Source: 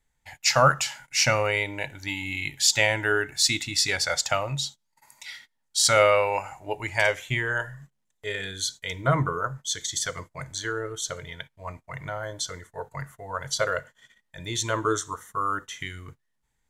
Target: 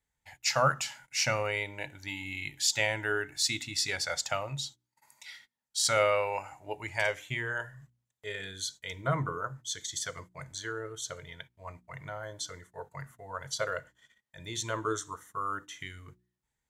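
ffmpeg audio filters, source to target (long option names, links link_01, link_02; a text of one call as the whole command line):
ffmpeg -i in.wav -af "highpass=43,bandreject=frequency=60.44:width_type=h:width=4,bandreject=frequency=120.88:width_type=h:width=4,bandreject=frequency=181.32:width_type=h:width=4,bandreject=frequency=241.76:width_type=h:width=4,bandreject=frequency=302.2:width_type=h:width=4,bandreject=frequency=362.64:width_type=h:width=4,volume=-7dB" out.wav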